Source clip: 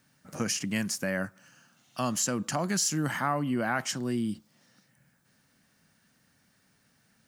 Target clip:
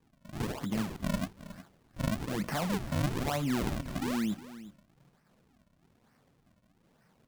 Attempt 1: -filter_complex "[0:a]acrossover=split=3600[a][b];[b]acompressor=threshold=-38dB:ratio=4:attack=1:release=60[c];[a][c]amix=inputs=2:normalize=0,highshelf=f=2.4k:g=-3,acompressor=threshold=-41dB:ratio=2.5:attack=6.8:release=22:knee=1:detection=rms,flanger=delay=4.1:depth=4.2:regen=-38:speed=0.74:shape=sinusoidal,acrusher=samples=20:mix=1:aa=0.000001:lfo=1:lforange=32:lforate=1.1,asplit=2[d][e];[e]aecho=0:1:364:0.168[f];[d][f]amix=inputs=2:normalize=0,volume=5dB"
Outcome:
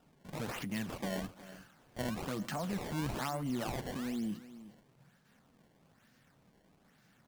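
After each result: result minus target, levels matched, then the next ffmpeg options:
compressor: peak gain reduction +5.5 dB; decimation with a swept rate: distortion -7 dB
-filter_complex "[0:a]acrossover=split=3600[a][b];[b]acompressor=threshold=-38dB:ratio=4:attack=1:release=60[c];[a][c]amix=inputs=2:normalize=0,highshelf=f=2.4k:g=-3,acompressor=threshold=-32dB:ratio=2.5:attack=6.8:release=22:knee=1:detection=rms,flanger=delay=4.1:depth=4.2:regen=-38:speed=0.74:shape=sinusoidal,acrusher=samples=20:mix=1:aa=0.000001:lfo=1:lforange=32:lforate=1.1,asplit=2[d][e];[e]aecho=0:1:364:0.168[f];[d][f]amix=inputs=2:normalize=0,volume=5dB"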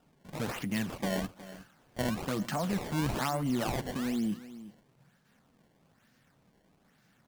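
decimation with a swept rate: distortion -7 dB
-filter_complex "[0:a]acrossover=split=3600[a][b];[b]acompressor=threshold=-38dB:ratio=4:attack=1:release=60[c];[a][c]amix=inputs=2:normalize=0,highshelf=f=2.4k:g=-3,acompressor=threshold=-32dB:ratio=2.5:attack=6.8:release=22:knee=1:detection=rms,flanger=delay=4.1:depth=4.2:regen=-38:speed=0.74:shape=sinusoidal,acrusher=samples=61:mix=1:aa=0.000001:lfo=1:lforange=97.6:lforate=1.1,asplit=2[d][e];[e]aecho=0:1:364:0.168[f];[d][f]amix=inputs=2:normalize=0,volume=5dB"

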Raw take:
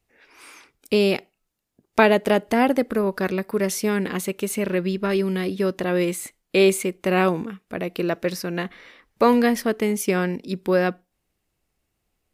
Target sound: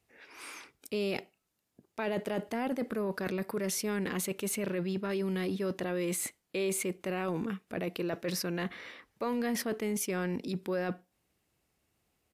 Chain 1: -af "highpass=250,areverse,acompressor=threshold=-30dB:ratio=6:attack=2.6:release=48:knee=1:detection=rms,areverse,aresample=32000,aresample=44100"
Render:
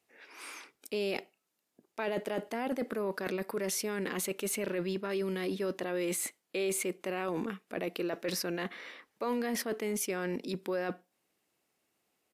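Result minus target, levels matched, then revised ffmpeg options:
125 Hz band -4.5 dB
-af "highpass=70,areverse,acompressor=threshold=-30dB:ratio=6:attack=2.6:release=48:knee=1:detection=rms,areverse,aresample=32000,aresample=44100"

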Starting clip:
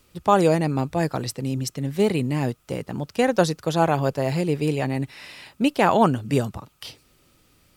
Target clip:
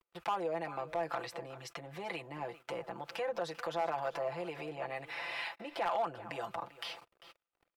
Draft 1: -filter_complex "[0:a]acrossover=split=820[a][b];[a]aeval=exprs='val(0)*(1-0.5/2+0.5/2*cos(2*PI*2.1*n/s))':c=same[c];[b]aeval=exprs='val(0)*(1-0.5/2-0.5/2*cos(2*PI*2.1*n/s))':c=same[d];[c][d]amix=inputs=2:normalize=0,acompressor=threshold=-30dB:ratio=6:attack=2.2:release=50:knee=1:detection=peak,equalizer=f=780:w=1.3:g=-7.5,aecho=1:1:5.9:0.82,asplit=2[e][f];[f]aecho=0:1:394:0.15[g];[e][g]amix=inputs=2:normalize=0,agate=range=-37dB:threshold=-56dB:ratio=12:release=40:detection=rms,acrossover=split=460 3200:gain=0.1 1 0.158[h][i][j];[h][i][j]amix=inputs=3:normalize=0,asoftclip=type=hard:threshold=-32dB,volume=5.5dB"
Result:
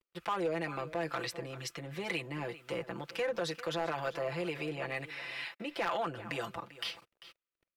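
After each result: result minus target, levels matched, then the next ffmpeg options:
compressor: peak gain reduction -8 dB; 1000 Hz band -3.5 dB
-filter_complex "[0:a]acrossover=split=820[a][b];[a]aeval=exprs='val(0)*(1-0.5/2+0.5/2*cos(2*PI*2.1*n/s))':c=same[c];[b]aeval=exprs='val(0)*(1-0.5/2-0.5/2*cos(2*PI*2.1*n/s))':c=same[d];[c][d]amix=inputs=2:normalize=0,acompressor=threshold=-39.5dB:ratio=6:attack=2.2:release=50:knee=1:detection=peak,equalizer=f=780:w=1.3:g=-7.5,aecho=1:1:5.9:0.82,asplit=2[e][f];[f]aecho=0:1:394:0.15[g];[e][g]amix=inputs=2:normalize=0,agate=range=-37dB:threshold=-56dB:ratio=12:release=40:detection=rms,acrossover=split=460 3200:gain=0.1 1 0.158[h][i][j];[h][i][j]amix=inputs=3:normalize=0,asoftclip=type=hard:threshold=-32dB,volume=5.5dB"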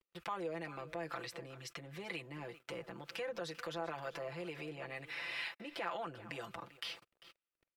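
1000 Hz band -3.5 dB
-filter_complex "[0:a]acrossover=split=820[a][b];[a]aeval=exprs='val(0)*(1-0.5/2+0.5/2*cos(2*PI*2.1*n/s))':c=same[c];[b]aeval=exprs='val(0)*(1-0.5/2-0.5/2*cos(2*PI*2.1*n/s))':c=same[d];[c][d]amix=inputs=2:normalize=0,acompressor=threshold=-39.5dB:ratio=6:attack=2.2:release=50:knee=1:detection=peak,equalizer=f=780:w=1.3:g=4,aecho=1:1:5.9:0.82,asplit=2[e][f];[f]aecho=0:1:394:0.15[g];[e][g]amix=inputs=2:normalize=0,agate=range=-37dB:threshold=-56dB:ratio=12:release=40:detection=rms,acrossover=split=460 3200:gain=0.1 1 0.158[h][i][j];[h][i][j]amix=inputs=3:normalize=0,asoftclip=type=hard:threshold=-32dB,volume=5.5dB"

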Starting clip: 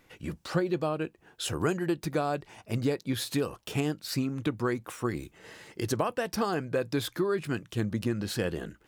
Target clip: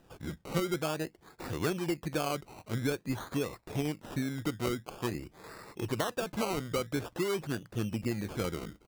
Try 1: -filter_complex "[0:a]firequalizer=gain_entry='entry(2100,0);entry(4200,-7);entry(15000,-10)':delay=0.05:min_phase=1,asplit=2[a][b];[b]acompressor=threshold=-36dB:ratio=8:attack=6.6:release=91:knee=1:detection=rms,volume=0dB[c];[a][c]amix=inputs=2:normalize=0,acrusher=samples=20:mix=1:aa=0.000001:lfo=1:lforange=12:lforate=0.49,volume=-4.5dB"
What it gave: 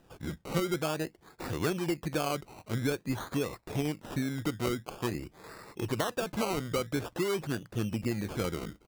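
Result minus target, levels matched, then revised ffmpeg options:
compressor: peak gain reduction -7.5 dB
-filter_complex "[0:a]firequalizer=gain_entry='entry(2100,0);entry(4200,-7);entry(15000,-10)':delay=0.05:min_phase=1,asplit=2[a][b];[b]acompressor=threshold=-44.5dB:ratio=8:attack=6.6:release=91:knee=1:detection=rms,volume=0dB[c];[a][c]amix=inputs=2:normalize=0,acrusher=samples=20:mix=1:aa=0.000001:lfo=1:lforange=12:lforate=0.49,volume=-4.5dB"

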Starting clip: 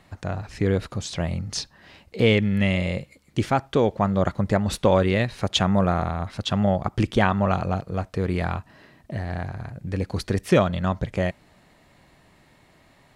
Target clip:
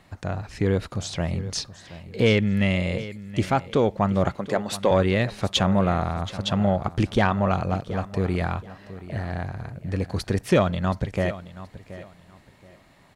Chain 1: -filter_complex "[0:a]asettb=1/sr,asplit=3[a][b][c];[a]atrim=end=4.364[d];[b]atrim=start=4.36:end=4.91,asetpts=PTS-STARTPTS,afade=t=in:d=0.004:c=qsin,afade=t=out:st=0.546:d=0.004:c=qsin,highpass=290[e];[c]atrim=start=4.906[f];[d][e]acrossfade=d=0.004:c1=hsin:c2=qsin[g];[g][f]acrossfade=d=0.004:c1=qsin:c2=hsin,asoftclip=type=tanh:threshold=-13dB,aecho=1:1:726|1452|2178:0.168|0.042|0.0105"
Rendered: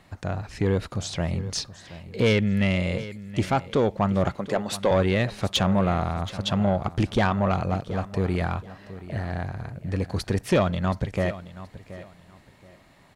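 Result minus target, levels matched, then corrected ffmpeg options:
soft clip: distortion +9 dB
-filter_complex "[0:a]asettb=1/sr,asplit=3[a][b][c];[a]atrim=end=4.364[d];[b]atrim=start=4.36:end=4.91,asetpts=PTS-STARTPTS,afade=t=in:d=0.004:c=qsin,afade=t=out:st=0.546:d=0.004:c=qsin,highpass=290[e];[c]atrim=start=4.906[f];[d][e]acrossfade=d=0.004:c1=hsin:c2=qsin[g];[g][f]acrossfade=d=0.004:c1=qsin:c2=hsin,asoftclip=type=tanh:threshold=-7dB,aecho=1:1:726|1452|2178:0.168|0.042|0.0105"

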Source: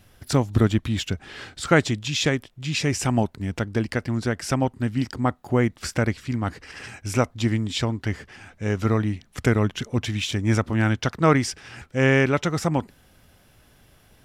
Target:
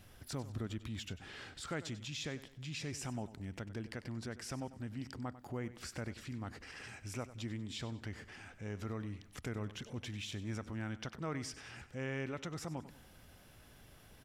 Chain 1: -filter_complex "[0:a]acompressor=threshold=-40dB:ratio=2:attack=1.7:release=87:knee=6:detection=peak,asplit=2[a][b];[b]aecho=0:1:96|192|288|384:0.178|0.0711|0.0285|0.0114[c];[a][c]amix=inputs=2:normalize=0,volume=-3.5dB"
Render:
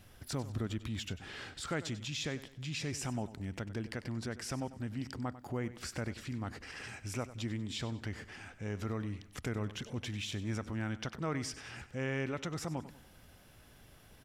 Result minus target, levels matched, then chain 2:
compressor: peak gain reduction -4 dB
-filter_complex "[0:a]acompressor=threshold=-48dB:ratio=2:attack=1.7:release=87:knee=6:detection=peak,asplit=2[a][b];[b]aecho=0:1:96|192|288|384:0.178|0.0711|0.0285|0.0114[c];[a][c]amix=inputs=2:normalize=0,volume=-3.5dB"

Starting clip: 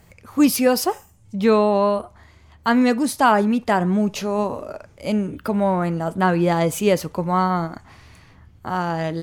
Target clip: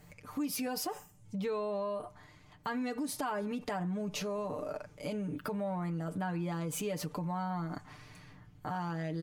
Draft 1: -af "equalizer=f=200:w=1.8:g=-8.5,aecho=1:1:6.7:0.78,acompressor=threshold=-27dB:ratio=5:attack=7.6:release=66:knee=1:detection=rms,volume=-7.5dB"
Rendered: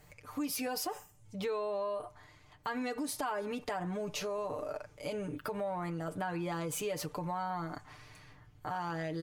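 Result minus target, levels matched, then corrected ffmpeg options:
250 Hz band -3.0 dB
-af "equalizer=f=200:w=1.8:g=2.5,aecho=1:1:6.7:0.78,acompressor=threshold=-27dB:ratio=5:attack=7.6:release=66:knee=1:detection=rms,volume=-7.5dB"

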